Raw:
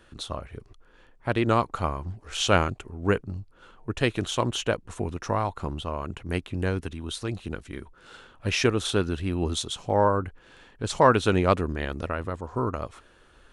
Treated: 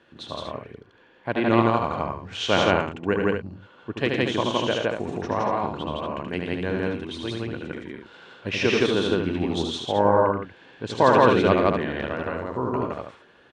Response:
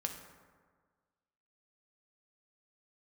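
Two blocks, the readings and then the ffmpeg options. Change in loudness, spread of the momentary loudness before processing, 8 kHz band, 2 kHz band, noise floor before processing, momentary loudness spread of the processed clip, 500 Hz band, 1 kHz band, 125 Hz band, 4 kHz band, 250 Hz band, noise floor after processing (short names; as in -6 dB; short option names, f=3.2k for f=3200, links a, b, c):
+3.5 dB, 14 LU, -6.5 dB, +3.5 dB, -57 dBFS, 17 LU, +4.5 dB, +3.5 dB, -1.5 dB, +2.0 dB, +4.0 dB, -55 dBFS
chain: -filter_complex "[0:a]highpass=150,lowpass=3.8k,bandreject=f=1.3k:w=8,asplit=2[a][b];[b]aecho=0:1:78.72|113.7|166.2|236.2:0.631|0.316|1|0.501[c];[a][c]amix=inputs=2:normalize=0"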